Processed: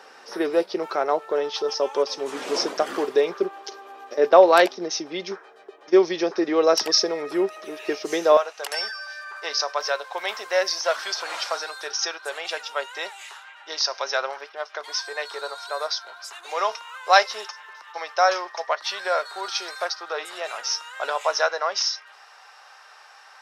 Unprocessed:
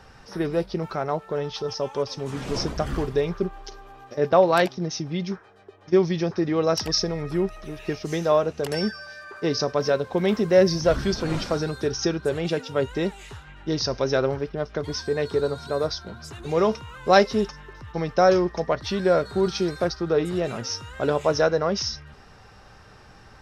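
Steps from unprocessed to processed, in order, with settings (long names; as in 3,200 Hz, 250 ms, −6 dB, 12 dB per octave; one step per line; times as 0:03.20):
high-pass filter 340 Hz 24 dB per octave, from 0:08.37 730 Hz
level +4.5 dB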